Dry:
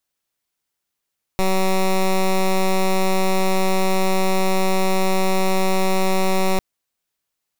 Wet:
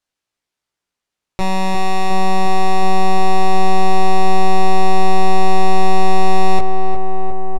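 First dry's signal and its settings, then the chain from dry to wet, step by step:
pulse 189 Hz, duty 12% -17 dBFS 5.20 s
distance through air 54 m; doubling 17 ms -3.5 dB; on a send: filtered feedback delay 357 ms, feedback 80%, low-pass 1.8 kHz, level -6 dB

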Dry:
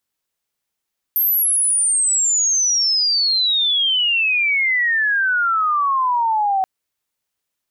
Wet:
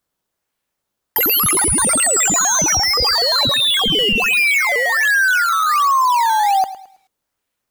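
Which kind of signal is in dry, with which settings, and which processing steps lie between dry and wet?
sweep logarithmic 13 kHz -> 750 Hz -14 dBFS -> -15 dBFS 5.48 s
in parallel at -4 dB: decimation with a swept rate 12×, swing 100% 1.3 Hz; on the sum: bit-crushed delay 108 ms, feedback 35%, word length 8-bit, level -15 dB

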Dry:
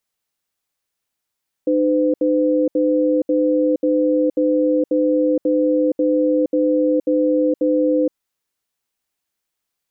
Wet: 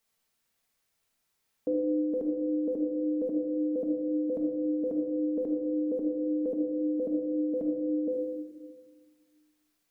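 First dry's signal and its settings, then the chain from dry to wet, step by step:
cadence 304 Hz, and 508 Hz, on 0.47 s, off 0.07 s, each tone -16.5 dBFS 6.46 s
peak limiter -21.5 dBFS; simulated room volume 980 m³, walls mixed, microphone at 1.6 m

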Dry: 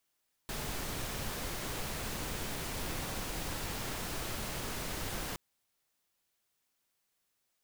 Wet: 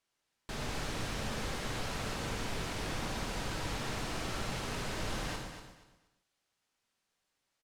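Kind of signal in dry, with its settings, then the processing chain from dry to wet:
noise pink, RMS -38 dBFS 4.87 s
distance through air 59 m; feedback delay 238 ms, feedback 24%, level -9 dB; gated-style reverb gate 170 ms flat, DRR 2.5 dB

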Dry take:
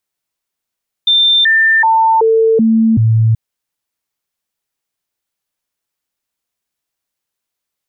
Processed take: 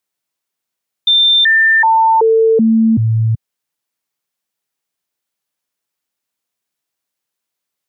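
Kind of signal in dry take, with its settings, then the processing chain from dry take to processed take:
stepped sine 3.58 kHz down, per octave 1, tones 6, 0.38 s, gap 0.00 s -7 dBFS
high-pass 110 Hz 12 dB/octave

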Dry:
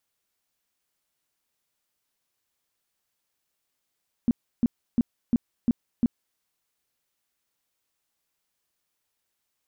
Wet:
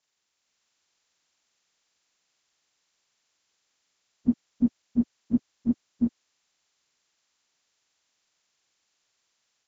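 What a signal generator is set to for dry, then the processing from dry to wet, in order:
tone bursts 237 Hz, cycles 7, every 0.35 s, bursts 6, -16.5 dBFS
frequency axis rescaled in octaves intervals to 76%; level rider gain up to 4 dB

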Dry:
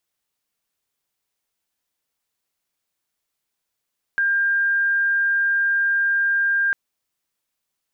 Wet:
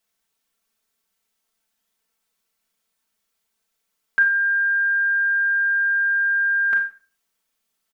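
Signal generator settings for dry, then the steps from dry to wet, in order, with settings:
tone sine 1.6 kHz -16.5 dBFS 2.55 s
peaking EQ 1.4 kHz +3 dB 0.29 oct; comb 4.5 ms, depth 85%; Schroeder reverb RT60 0.38 s, combs from 30 ms, DRR 4 dB

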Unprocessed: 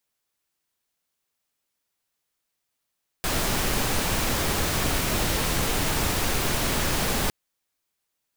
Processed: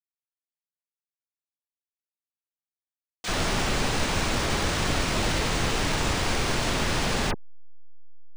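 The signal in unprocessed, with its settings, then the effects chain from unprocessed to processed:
noise pink, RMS -24.5 dBFS 4.06 s
send-on-delta sampling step -33 dBFS; phase dispersion lows, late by 43 ms, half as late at 2.7 kHz; decimation joined by straight lines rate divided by 3×

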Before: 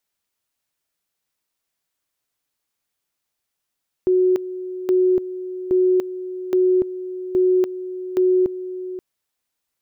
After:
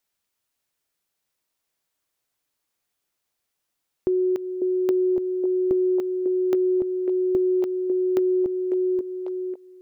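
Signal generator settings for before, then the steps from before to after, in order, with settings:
two-level tone 368 Hz -13 dBFS, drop 13.5 dB, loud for 0.29 s, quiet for 0.53 s, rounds 6
compression, threshold -20 dBFS; repeats whose band climbs or falls 547 ms, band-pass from 410 Hz, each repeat 0.7 oct, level -3 dB

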